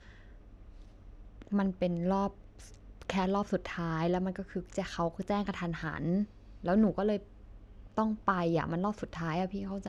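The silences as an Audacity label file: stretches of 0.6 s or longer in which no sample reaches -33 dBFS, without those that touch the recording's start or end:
2.280000	3.020000	silence
7.170000	7.980000	silence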